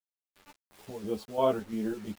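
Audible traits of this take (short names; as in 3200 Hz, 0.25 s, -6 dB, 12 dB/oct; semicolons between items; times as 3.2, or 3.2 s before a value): chopped level 2.9 Hz, depth 60%, duty 60%; a quantiser's noise floor 8-bit, dither none; a shimmering, thickened sound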